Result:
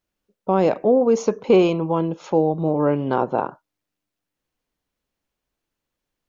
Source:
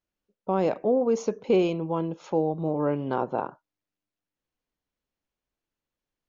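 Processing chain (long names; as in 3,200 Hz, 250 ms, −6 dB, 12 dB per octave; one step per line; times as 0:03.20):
0:01.27–0:01.92: parametric band 1,100 Hz +6.5 dB 0.77 octaves
level +6.5 dB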